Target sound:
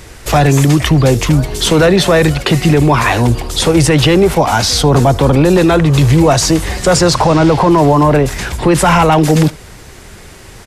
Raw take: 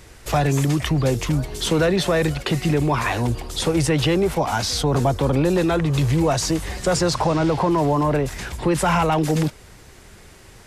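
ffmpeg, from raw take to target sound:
-filter_complex "[0:a]apsyclip=12.5dB,asplit=2[a][b];[b]aecho=0:1:75:0.0668[c];[a][c]amix=inputs=2:normalize=0,volume=-2dB"

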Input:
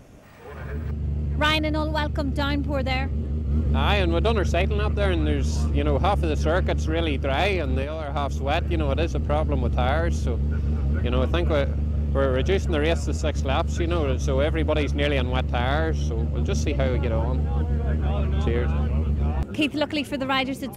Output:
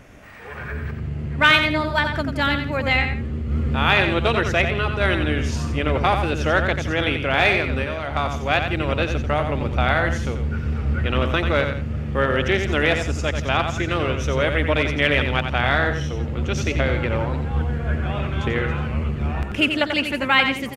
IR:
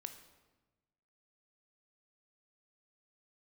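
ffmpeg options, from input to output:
-af "equalizer=f=1.9k:t=o:w=1.5:g=10.5,aecho=1:1:89|168:0.447|0.15"

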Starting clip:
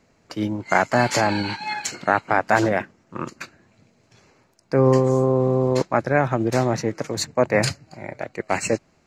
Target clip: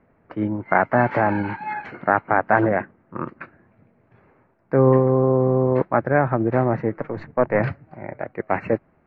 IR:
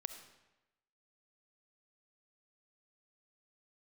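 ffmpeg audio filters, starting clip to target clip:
-filter_complex "[0:a]asettb=1/sr,asplit=3[a][b][c];[a]atrim=end=6.964[d];[b]atrim=start=6.96:end=7.6,asetpts=PTS-STARTPTS,afade=t=in:d=0.004:c=qsin,afade=t=out:st=0.636:d=0.004:c=qsin,aeval=exprs='if(lt(val(0),0),0.708*val(0),val(0))':c=same[e];[c]atrim=start=7.596[f];[d][e]acrossfade=d=0.004:c1=hsin:c2=qsin[g];[g][f]acrossfade=d=0.004:c1=qsin:c2=hsin,lowpass=f=1.9k:w=0.5412,lowpass=f=1.9k:w=1.3066,volume=1dB"

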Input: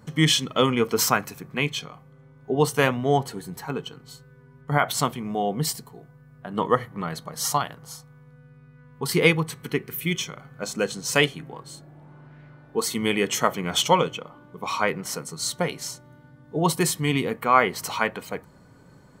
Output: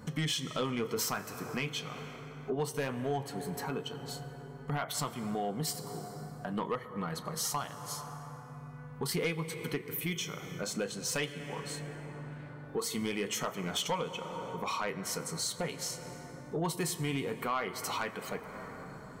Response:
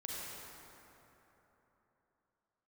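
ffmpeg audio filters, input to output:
-filter_complex "[0:a]flanger=delay=4.1:depth=6.9:regen=-67:speed=0.43:shape=sinusoidal,asplit=2[a][b];[1:a]atrim=start_sample=2205,adelay=36[c];[b][c]afir=irnorm=-1:irlink=0,volume=-15.5dB[d];[a][d]amix=inputs=2:normalize=0,acompressor=threshold=-42dB:ratio=2.5,aeval=exprs='0.0944*(cos(1*acos(clip(val(0)/0.0944,-1,1)))-cos(1*PI/2))+0.0211*(cos(5*acos(clip(val(0)/0.0944,-1,1)))-cos(5*PI/2))':c=same"

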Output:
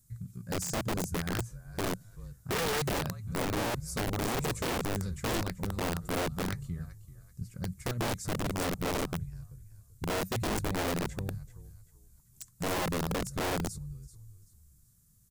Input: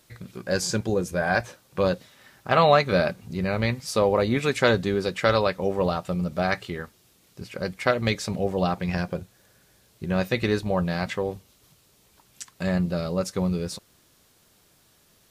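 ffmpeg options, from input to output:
-filter_complex "[0:a]firequalizer=gain_entry='entry(130,0);entry(320,-23);entry(680,-30);entry(1200,-22);entry(2900,-29);entry(7200,-7)':delay=0.05:min_phase=1,asplit=4[a][b][c][d];[b]adelay=385,afreqshift=-36,volume=-14dB[e];[c]adelay=770,afreqshift=-72,volume=-23.6dB[f];[d]adelay=1155,afreqshift=-108,volume=-33.3dB[g];[a][e][f][g]amix=inputs=4:normalize=0,aeval=exprs='(mod(29.9*val(0)+1,2)-1)/29.9':c=same,volume=3dB"

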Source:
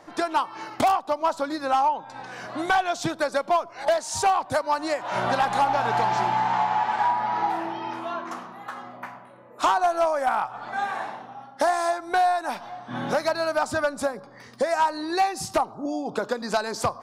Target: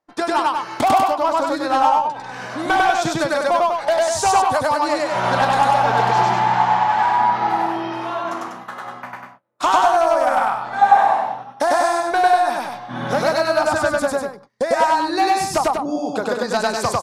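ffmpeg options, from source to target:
-filter_complex "[0:a]asettb=1/sr,asplit=3[a][b][c];[a]atrim=end=10.814[d];[b]atrim=start=10.81:end=11.22,asetpts=PTS-STARTPTS,afade=t=in:d=0.004:c=qsin,afade=t=out:st=0.406:d=0.004:c=qsin,equalizer=f=770:w=2.1:g=13[e];[c]atrim=start=11.216[f];[d][e]acrossfade=d=0.004:c1=hsin:c2=qsin[g];[g][f]acrossfade=d=0.004:c1=qsin:c2=hsin,agate=range=-33dB:threshold=-40dB:ratio=16:detection=peak,aecho=1:1:99.13|195.3:1|0.562,volume=3dB"

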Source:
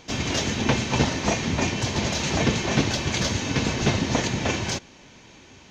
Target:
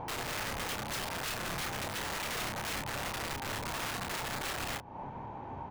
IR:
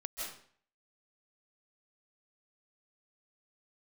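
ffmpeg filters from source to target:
-filter_complex "[0:a]equalizer=f=110:t=o:w=0.78:g=6.5,acompressor=threshold=-34dB:ratio=10,lowpass=f=880:t=q:w=4.9,aeval=exprs='(mod(42.2*val(0)+1,2)-1)/42.2':c=same,alimiter=level_in=14dB:limit=-24dB:level=0:latency=1:release=456,volume=-14dB,equalizer=f=310:t=o:w=2.2:g=-3.5,bandreject=f=50:t=h:w=6,bandreject=f=100:t=h:w=6,asplit=2[a][b];[b]adelay=29,volume=-5.5dB[c];[a][c]amix=inputs=2:normalize=0,volume=6.5dB"

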